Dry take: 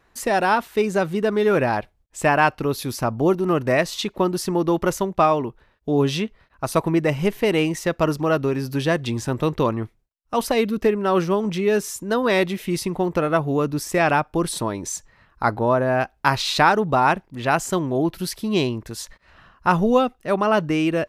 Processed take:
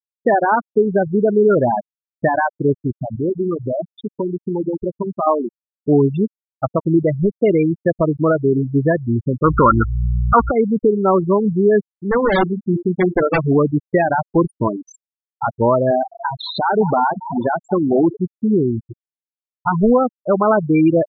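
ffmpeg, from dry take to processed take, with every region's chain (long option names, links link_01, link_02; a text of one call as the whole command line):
ffmpeg -i in.wav -filter_complex "[0:a]asettb=1/sr,asplit=3[link_01][link_02][link_03];[link_01]atrim=end=2.924[link_04];[link_02]atrim=start=2.92:end=5.27,asetpts=PTS-STARTPTS,afade=type=in:duration=0.004:curve=qsin,afade=type=out:start_time=2.346:duration=0.004:curve=qsin,acompressor=threshold=-25dB:ratio=3:attack=3.2:release=140:knee=1:detection=peak,aecho=1:1:135|270|405|540|675:0.178|0.0889|0.0445|0.0222|0.0111,atrim=end_sample=103635[link_05];[link_03]atrim=start=5.266[link_06];[link_04][link_05]acrossfade=duration=0.004:curve1=hsin:curve2=qsin[link_07];[link_07][link_06]acrossfade=duration=0.004:curve1=qsin:curve2=hsin,asettb=1/sr,asplit=3[link_08][link_09][link_10];[link_08]atrim=end=9.444[link_11];[link_09]atrim=start=9.44:end=10.51,asetpts=PTS-STARTPTS,afade=type=in:duration=0.004:curve=qsin,afade=type=out:start_time=1.066:duration=0.004:curve=qsin,lowpass=frequency=1400:width_type=q:width=14,aeval=exprs='val(0)+0.0316*(sin(2*PI*60*n/s)+sin(2*PI*2*60*n/s)/2+sin(2*PI*3*60*n/s)/3+sin(2*PI*4*60*n/s)/4+sin(2*PI*5*60*n/s)/5)':channel_layout=same,aeval=exprs='0.596*sin(PI/2*1.41*val(0)/0.596)':channel_layout=same[link_12];[link_10]atrim=start=10.506[link_13];[link_11][link_12]acrossfade=duration=0.004:curve1=hsin:curve2=qsin[link_14];[link_14][link_13]acrossfade=duration=0.004:curve1=qsin:curve2=hsin,asettb=1/sr,asplit=3[link_15][link_16][link_17];[link_15]atrim=end=12.114[link_18];[link_16]atrim=start=12.11:end=13.56,asetpts=PTS-STARTPTS,afade=type=in:duration=0.004:curve=qsin,afade=type=out:start_time=1.446:duration=0.004:curve=qsin,bandreject=frequency=50:width_type=h:width=6,bandreject=frequency=100:width_type=h:width=6,bandreject=frequency=150:width_type=h:width=6,bandreject=frequency=200:width_type=h:width=6,bandreject=frequency=250:width_type=h:width=6,bandreject=frequency=300:width_type=h:width=6,bandreject=frequency=350:width_type=h:width=6,aeval=exprs='(mod(4.47*val(0)+1,2)-1)/4.47':channel_layout=same[link_19];[link_17]atrim=start=13.556[link_20];[link_18][link_19]acrossfade=duration=0.004:curve1=hsin:curve2=qsin[link_21];[link_21][link_20]acrossfade=duration=0.004:curve1=qsin:curve2=hsin,asettb=1/sr,asplit=3[link_22][link_23][link_24];[link_22]atrim=end=15.914[link_25];[link_23]atrim=start=15.91:end=18.18,asetpts=PTS-STARTPTS,afade=type=in:duration=0.004:curve=qsin,afade=type=out:start_time=2.266:duration=0.004:curve=qsin,aeval=exprs='val(0)+0.5*0.075*sgn(val(0))':channel_layout=same,highpass=170,asplit=8[link_26][link_27][link_28][link_29][link_30][link_31][link_32][link_33];[link_27]adelay=207,afreqshift=34,volume=-14dB[link_34];[link_28]adelay=414,afreqshift=68,volume=-17.9dB[link_35];[link_29]adelay=621,afreqshift=102,volume=-21.8dB[link_36];[link_30]adelay=828,afreqshift=136,volume=-25.6dB[link_37];[link_31]adelay=1035,afreqshift=170,volume=-29.5dB[link_38];[link_32]adelay=1242,afreqshift=204,volume=-33.4dB[link_39];[link_33]adelay=1449,afreqshift=238,volume=-37.3dB[link_40];[link_26][link_34][link_35][link_36][link_37][link_38][link_39][link_40]amix=inputs=8:normalize=0,atrim=end_sample=100107[link_41];[link_24]atrim=start=18.176[link_42];[link_25][link_41]acrossfade=duration=0.004:curve1=hsin:curve2=qsin[link_43];[link_43][link_42]acrossfade=duration=0.004:curve1=qsin:curve2=hsin,alimiter=limit=-12.5dB:level=0:latency=1:release=225,afftfilt=real='re*gte(hypot(re,im),0.224)':imag='im*gte(hypot(re,im),0.224)':win_size=1024:overlap=0.75,lowpass=2700,volume=8dB" out.wav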